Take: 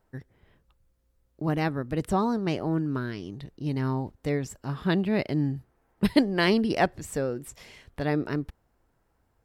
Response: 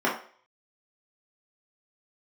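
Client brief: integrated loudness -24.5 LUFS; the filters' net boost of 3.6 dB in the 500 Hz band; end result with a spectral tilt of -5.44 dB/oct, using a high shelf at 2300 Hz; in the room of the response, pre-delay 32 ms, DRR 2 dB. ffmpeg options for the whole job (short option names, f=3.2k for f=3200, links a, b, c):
-filter_complex "[0:a]equalizer=f=500:t=o:g=4.5,highshelf=f=2.3k:g=3,asplit=2[a][b];[1:a]atrim=start_sample=2205,adelay=32[c];[b][c]afir=irnorm=-1:irlink=0,volume=-17dB[d];[a][d]amix=inputs=2:normalize=0,volume=-1dB"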